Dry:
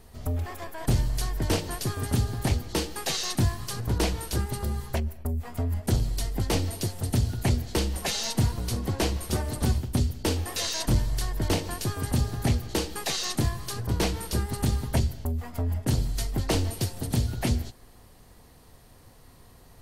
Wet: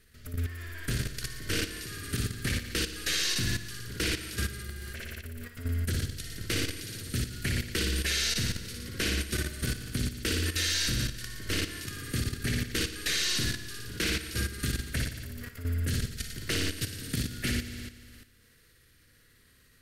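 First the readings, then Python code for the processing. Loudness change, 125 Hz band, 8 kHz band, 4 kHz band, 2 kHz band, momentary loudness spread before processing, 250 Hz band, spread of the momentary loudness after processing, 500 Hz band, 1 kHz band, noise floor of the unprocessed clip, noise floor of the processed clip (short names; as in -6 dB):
-3.0 dB, -6.5 dB, -0.5 dB, +2.0 dB, +4.5 dB, 5 LU, -5.5 dB, 12 LU, -7.5 dB, -11.0 dB, -53 dBFS, -61 dBFS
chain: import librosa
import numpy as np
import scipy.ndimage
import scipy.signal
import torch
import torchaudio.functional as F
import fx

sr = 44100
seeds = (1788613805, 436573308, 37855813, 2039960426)

y = fx.curve_eq(x, sr, hz=(480.0, 850.0, 1500.0, 6100.0), db=(0, -19, 12, 6))
y = fx.room_flutter(y, sr, wall_m=10.0, rt60_s=1.4)
y = fx.level_steps(y, sr, step_db=11)
y = F.gain(torch.from_numpy(y), -6.5).numpy()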